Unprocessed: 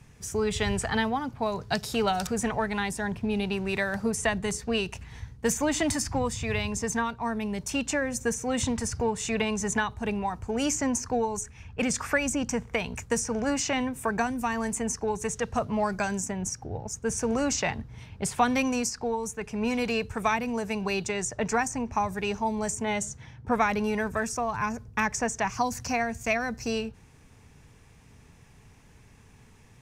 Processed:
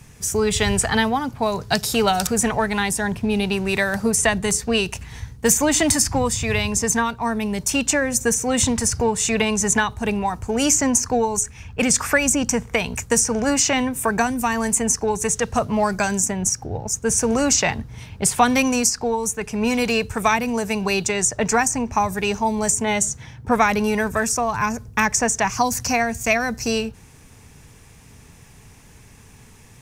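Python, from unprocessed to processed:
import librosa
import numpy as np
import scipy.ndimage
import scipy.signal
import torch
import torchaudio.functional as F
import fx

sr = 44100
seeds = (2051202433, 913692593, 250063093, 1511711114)

y = fx.high_shelf(x, sr, hz=6500.0, db=10.5)
y = y * 10.0 ** (7.0 / 20.0)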